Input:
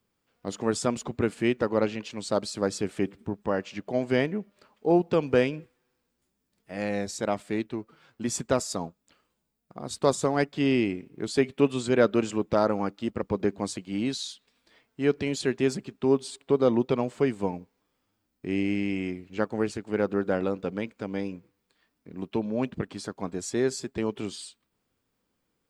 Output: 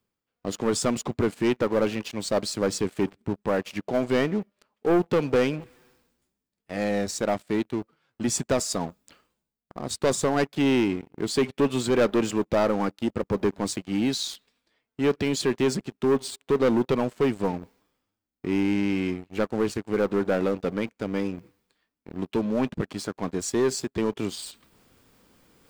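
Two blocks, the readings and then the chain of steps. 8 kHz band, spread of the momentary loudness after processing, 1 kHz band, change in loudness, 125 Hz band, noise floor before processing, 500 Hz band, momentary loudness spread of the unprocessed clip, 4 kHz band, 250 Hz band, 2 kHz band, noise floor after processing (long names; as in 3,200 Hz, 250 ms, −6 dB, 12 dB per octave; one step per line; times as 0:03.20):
+4.5 dB, 10 LU, +2.0 dB, +2.0 dB, +1.5 dB, −78 dBFS, +1.5 dB, 12 LU, +4.0 dB, +2.0 dB, +1.5 dB, −85 dBFS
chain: leveller curve on the samples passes 3
reversed playback
upward compression, threshold −29 dBFS
reversed playback
level −6.5 dB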